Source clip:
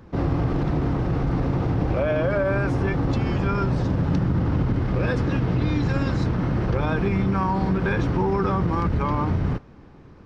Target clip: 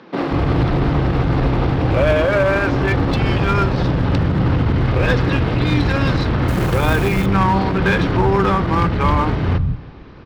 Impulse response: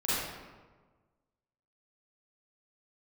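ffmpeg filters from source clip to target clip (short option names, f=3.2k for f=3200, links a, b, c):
-filter_complex "[0:a]lowpass=f=4.2k:w=0.5412,lowpass=f=4.2k:w=1.3066,highshelf=f=2.8k:g=11.5,asplit=2[a][b];[b]aeval=exprs='0.106*(abs(mod(val(0)/0.106+3,4)-2)-1)':c=same,volume=-4.5dB[c];[a][c]amix=inputs=2:normalize=0,acrossover=split=190[d][e];[d]adelay=180[f];[f][e]amix=inputs=2:normalize=0,asettb=1/sr,asplit=3[g][h][i];[g]atrim=end=6.484[j];[h]atrim=start=6.48:end=7.26,asetpts=PTS-STARTPTS,afade=t=in:d=0.004:c=qsin,afade=t=out:st=0.776:d=0.004:c=qsin,acrusher=bits=5:mode=log:mix=0:aa=0.000001[k];[i]atrim=start=7.256[l];[j][k]acrossfade=d=0.004:c1=hsin:c2=qsin[m];[m][l]acrossfade=d=0.004:c1=qsin:c2=hsin,asplit=2[n][o];[1:a]atrim=start_sample=2205,asetrate=42777,aresample=44100[p];[o][p]afir=irnorm=-1:irlink=0,volume=-28dB[q];[n][q]amix=inputs=2:normalize=0,volume=3.5dB"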